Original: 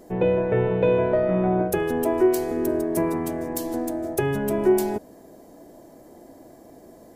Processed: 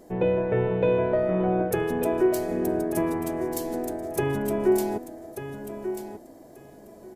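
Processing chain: on a send: feedback echo 1.189 s, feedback 17%, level -10 dB; on the sum: downsampling 32000 Hz; gain -2.5 dB

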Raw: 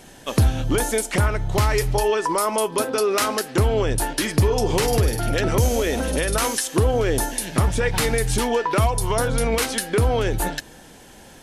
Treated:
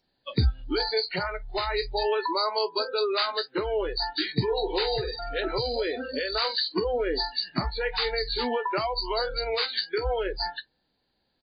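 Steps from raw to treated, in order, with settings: nonlinear frequency compression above 3500 Hz 4:1; doubler 16 ms -11.5 dB; spectral noise reduction 25 dB; gain -5.5 dB

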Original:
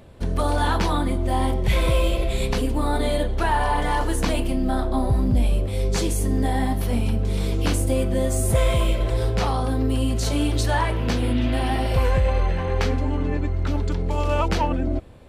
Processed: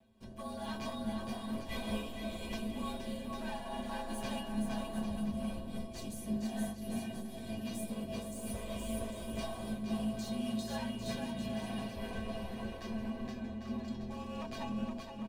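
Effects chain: minimum comb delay 6.9 ms; bell 1400 Hz -8 dB 0.38 oct; notch 2100 Hz, Q 9.1; frequency shift -50 Hz; resonator 220 Hz, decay 0.18 s, harmonics odd, mix 90%; on a send: bouncing-ball echo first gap 0.47 s, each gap 0.7×, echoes 5; on the sum: noise-modulated level, depth 65%; gain -1.5 dB

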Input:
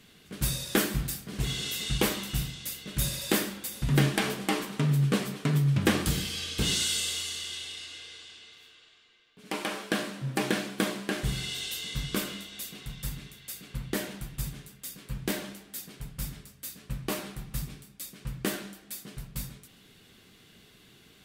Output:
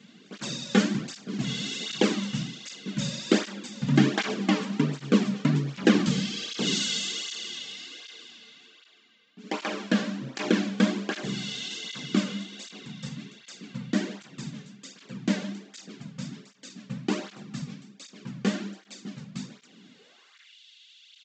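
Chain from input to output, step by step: downsampling 16000 Hz; high-pass sweep 210 Hz -> 3200 Hz, 19.88–20.56; tape flanging out of phase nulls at 1.3 Hz, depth 3.2 ms; gain +3.5 dB

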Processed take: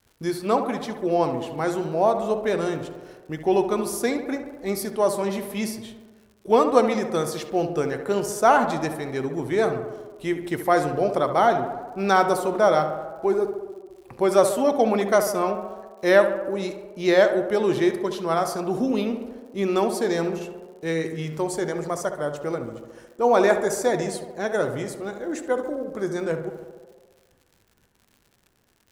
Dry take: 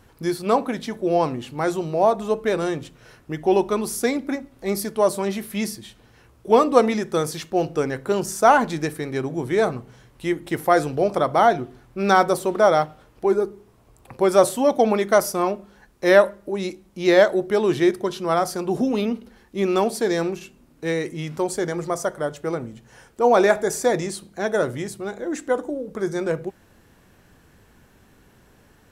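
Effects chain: expander -45 dBFS; tape echo 70 ms, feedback 79%, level -8.5 dB, low-pass 2100 Hz; crackle 110/s -42 dBFS; gain -2.5 dB

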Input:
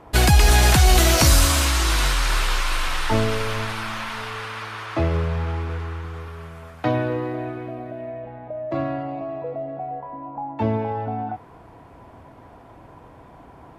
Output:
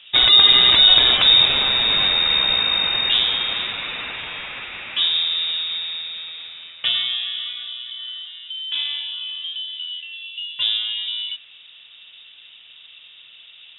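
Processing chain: inverted band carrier 3700 Hz

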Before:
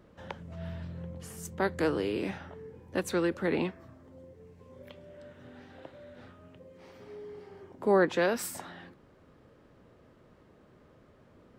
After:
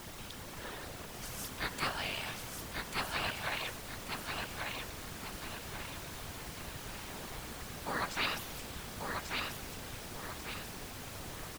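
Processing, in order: notches 50/100/150/200/250/300/350 Hz; spectral gate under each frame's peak -20 dB weak; notch 2000 Hz, Q 18; added noise pink -53 dBFS; whisperiser; feedback echo 1.14 s, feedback 42%, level -3.5 dB; gain +6.5 dB

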